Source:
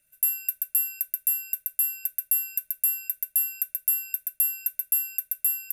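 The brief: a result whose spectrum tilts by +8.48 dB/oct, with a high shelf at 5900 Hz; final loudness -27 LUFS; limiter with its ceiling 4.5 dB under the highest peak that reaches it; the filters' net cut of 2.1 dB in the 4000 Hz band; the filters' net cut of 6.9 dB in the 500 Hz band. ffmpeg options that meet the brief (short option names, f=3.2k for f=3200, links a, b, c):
-af "equalizer=f=500:t=o:g=-9,equalizer=f=4k:t=o:g=-6.5,highshelf=f=5.9k:g=6.5,volume=-5.5dB,alimiter=limit=-15dB:level=0:latency=1"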